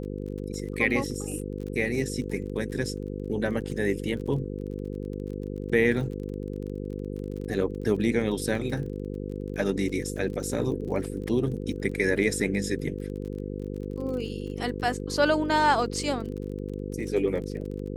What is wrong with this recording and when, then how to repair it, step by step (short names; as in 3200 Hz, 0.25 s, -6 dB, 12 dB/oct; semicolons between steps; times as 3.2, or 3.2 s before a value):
buzz 50 Hz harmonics 10 -34 dBFS
crackle 29/s -36 dBFS
8.55 gap 2.4 ms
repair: de-click; de-hum 50 Hz, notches 10; interpolate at 8.55, 2.4 ms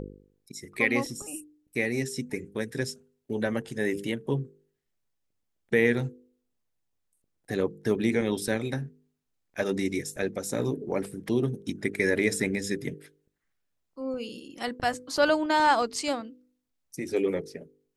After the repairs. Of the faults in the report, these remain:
none